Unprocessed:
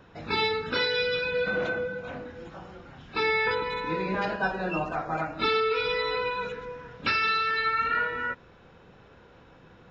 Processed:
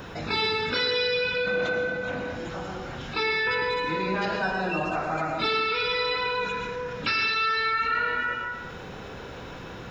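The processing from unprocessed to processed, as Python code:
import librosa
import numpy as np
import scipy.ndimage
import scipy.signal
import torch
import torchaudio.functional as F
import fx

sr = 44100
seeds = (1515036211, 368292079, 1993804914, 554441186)

y = fx.high_shelf(x, sr, hz=4800.0, db=11.0)
y = fx.rev_plate(y, sr, seeds[0], rt60_s=0.68, hf_ratio=0.85, predelay_ms=95, drr_db=4.5)
y = fx.env_flatten(y, sr, amount_pct=50)
y = y * 10.0 ** (-3.0 / 20.0)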